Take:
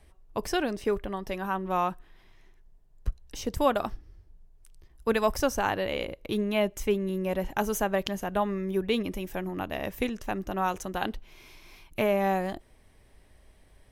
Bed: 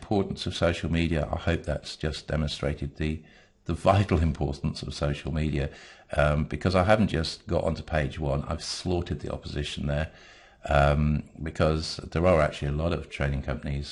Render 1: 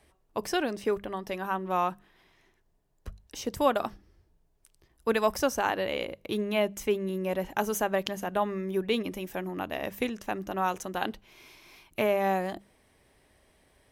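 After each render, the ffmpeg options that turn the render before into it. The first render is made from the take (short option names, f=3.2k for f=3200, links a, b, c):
-af "highpass=f=150:p=1,bandreject=f=50:t=h:w=6,bandreject=f=100:t=h:w=6,bandreject=f=150:t=h:w=6,bandreject=f=200:t=h:w=6"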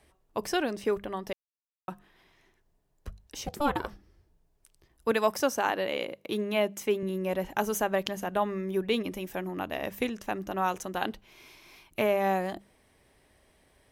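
-filter_complex "[0:a]asplit=3[a][b][c];[a]afade=t=out:st=3.46:d=0.02[d];[b]aeval=exprs='val(0)*sin(2*PI*290*n/s)':c=same,afade=t=in:st=3.46:d=0.02,afade=t=out:st=3.87:d=0.02[e];[c]afade=t=in:st=3.87:d=0.02[f];[d][e][f]amix=inputs=3:normalize=0,asettb=1/sr,asplit=3[g][h][i];[g]atrim=end=5.114[j];[h]atrim=start=5.11:end=7.03,asetpts=PTS-STARTPTS,afade=t=in:d=0.004:c=qsin,afade=t=out:st=1.916:d=0.004:c=qsin,highpass=160[k];[i]atrim=start=7.026[l];[j][k]acrossfade=d=0.004:c1=hsin:c2=qsin[m];[m][l]acrossfade=d=0.004:c1=qsin:c2=hsin,asplit=3[n][o][p];[n]atrim=end=1.33,asetpts=PTS-STARTPTS,afade=t=out:st=1.326:d=0.004:c=hsin[q];[o]atrim=start=1.33:end=1.88,asetpts=PTS-STARTPTS,volume=0[r];[p]atrim=start=1.88,asetpts=PTS-STARTPTS,afade=t=in:d=0.004:c=hsin[s];[q][r][s]concat=n=3:v=0:a=1"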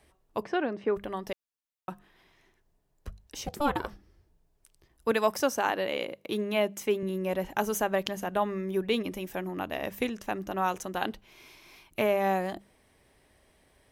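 -filter_complex "[0:a]asplit=3[a][b][c];[a]afade=t=out:st=0.42:d=0.02[d];[b]highpass=130,lowpass=2.1k,afade=t=in:st=0.42:d=0.02,afade=t=out:st=0.95:d=0.02[e];[c]afade=t=in:st=0.95:d=0.02[f];[d][e][f]amix=inputs=3:normalize=0"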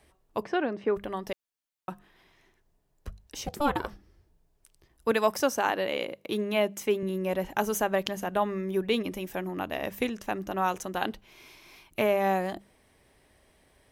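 -af "volume=1dB"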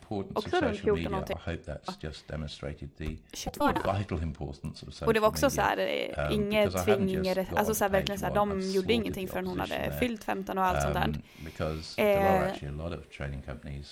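-filter_complex "[1:a]volume=-9dB[a];[0:a][a]amix=inputs=2:normalize=0"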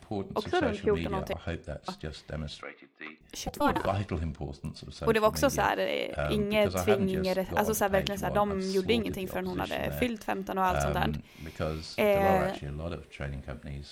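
-filter_complex "[0:a]asettb=1/sr,asplit=3[a][b][c];[a]atrim=end=2.624[d];[b]atrim=start=2.62:end=3.21,asetpts=PTS-STARTPTS,afade=t=in:d=0.004:c=qsin,afade=t=out:st=0.586:d=0.004:c=qsin,highpass=f=320:w=0.5412,highpass=f=320:w=1.3066,equalizer=f=380:t=q:w=4:g=-8,equalizer=f=580:t=q:w=4:g=-9,equalizer=f=1.2k:t=q:w=4:g=8,equalizer=f=2.1k:t=q:w=4:g=9,lowpass=f=3.9k:w=0.5412,lowpass=f=3.9k:w=1.3066[e];[c]atrim=start=3.206[f];[d][e]acrossfade=d=0.004:c1=hsin:c2=qsin[g];[g][f]acrossfade=d=0.004:c1=qsin:c2=hsin"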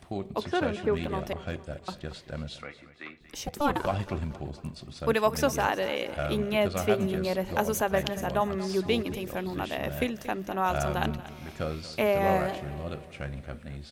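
-af "aecho=1:1:231|462|693|924:0.158|0.0792|0.0396|0.0198"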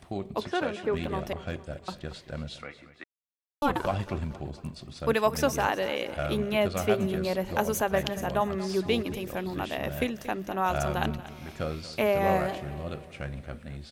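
-filter_complex "[0:a]asettb=1/sr,asplit=3[a][b][c];[a]atrim=end=0.484[d];[b]atrim=start=0.48:end=0.94,asetpts=PTS-STARTPTS,afade=t=in:d=0.004:c=qsin,afade=t=out:st=0.456:d=0.004:c=qsin,highpass=f=290:p=1[e];[c]atrim=start=0.936[f];[d][e]acrossfade=d=0.004:c1=hsin:c2=qsin[g];[g][f]acrossfade=d=0.004:c1=qsin:c2=hsin,asplit=3[h][i][j];[h]atrim=end=3.04,asetpts=PTS-STARTPTS,afade=t=out:st=3.036:d=0.004:c=hsin[k];[i]atrim=start=3.04:end=3.62,asetpts=PTS-STARTPTS,volume=0[l];[j]atrim=start=3.62,asetpts=PTS-STARTPTS,afade=t=in:d=0.004:c=hsin[m];[k][l][m]concat=n=3:v=0:a=1"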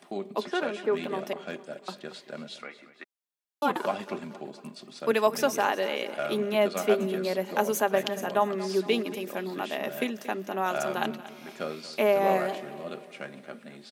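-af "highpass=f=220:w=0.5412,highpass=f=220:w=1.3066,aecho=1:1:4.9:0.36"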